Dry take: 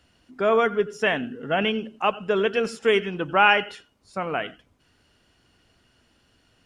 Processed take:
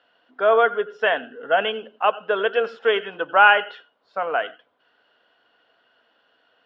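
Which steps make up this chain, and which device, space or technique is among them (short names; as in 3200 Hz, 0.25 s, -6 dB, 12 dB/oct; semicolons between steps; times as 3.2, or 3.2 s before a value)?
phone earpiece (speaker cabinet 450–3600 Hz, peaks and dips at 490 Hz +6 dB, 690 Hz +6 dB, 1000 Hz +3 dB, 1500 Hz +7 dB, 2300 Hz -6 dB, 3300 Hz +4 dB); notch 360 Hz, Q 12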